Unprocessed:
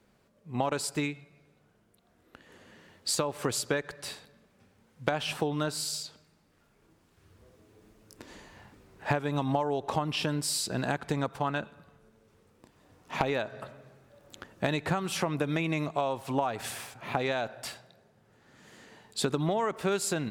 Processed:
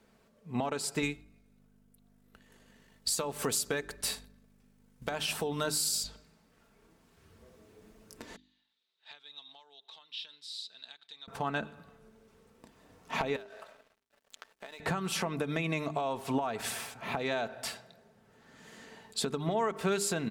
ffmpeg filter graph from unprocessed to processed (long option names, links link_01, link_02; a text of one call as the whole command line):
ffmpeg -i in.wav -filter_complex "[0:a]asettb=1/sr,asplit=3[link_01][link_02][link_03];[link_01]atrim=end=1.024[link_04];[link_02]atrim=start=1.02:end=6.04,asetpts=PTS-STARTPTS,afade=type=in:duration=0.004:curve=qsin,afade=type=out:start_time=5.016:duration=0.004:curve=qsin,highshelf=frequency=6500:gain=12,aeval=exprs='val(0)+0.00631*(sin(2*PI*50*n/s)+sin(2*PI*2*50*n/s)/2+sin(2*PI*3*50*n/s)/3+sin(2*PI*4*50*n/s)/4+sin(2*PI*5*50*n/s)/5)':channel_layout=same,agate=range=-33dB:threshold=-38dB:ratio=3:release=100:detection=peak[link_05];[link_03]atrim=start=6.036[link_06];[link_04][link_05]acrossfade=duration=0.004:curve1=hsin:curve2=qsin[link_07];[link_07][link_06]acrossfade=duration=0.004:curve1=qsin:curve2=hsin,asettb=1/sr,asplit=3[link_08][link_09][link_10];[link_08]atrim=end=8.364[link_11];[link_09]atrim=start=8.36:end=11.28,asetpts=PTS-STARTPTS,afade=type=in:duration=0.004:curve=qsin,afade=type=out:start_time=2.916:duration=0.004:curve=qsin,agate=range=-14dB:threshold=-49dB:ratio=16:release=100:detection=peak,acompressor=mode=upward:threshold=-47dB:ratio=2.5:attack=3.2:release=140:knee=2.83:detection=peak,bandpass=frequency=3700:width_type=q:width=8.5[link_12];[link_10]atrim=start=11.276[link_13];[link_11][link_12]acrossfade=duration=0.004:curve1=hsin:curve2=qsin[link_14];[link_14][link_13]acrossfade=duration=0.004:curve1=qsin:curve2=hsin,asettb=1/sr,asplit=3[link_15][link_16][link_17];[link_15]atrim=end=13.364[link_18];[link_16]atrim=start=13.36:end=14.8,asetpts=PTS-STARTPTS,afade=type=in:duration=0.004:curve=qsin,afade=type=out:start_time=1.436:duration=0.004:curve=qsin,highpass=550,acompressor=threshold=-44dB:ratio=5:attack=3.2:release=140:knee=1:detection=peak,aeval=exprs='sgn(val(0))*max(abs(val(0))-0.00119,0)':channel_layout=same[link_19];[link_17]atrim=start=14.796[link_20];[link_18][link_19]acrossfade=duration=0.004:curve1=hsin:curve2=qsin[link_21];[link_21][link_20]acrossfade=duration=0.004:curve1=qsin:curve2=hsin,aecho=1:1:4.5:0.36,bandreject=frequency=50.3:width_type=h:width=4,bandreject=frequency=100.6:width_type=h:width=4,bandreject=frequency=150.9:width_type=h:width=4,bandreject=frequency=201.2:width_type=h:width=4,bandreject=frequency=251.5:width_type=h:width=4,bandreject=frequency=301.8:width_type=h:width=4,bandreject=frequency=352.1:width_type=h:width=4,bandreject=frequency=402.4:width_type=h:width=4,alimiter=limit=-21.5dB:level=0:latency=1:release=268,volume=1dB" out.wav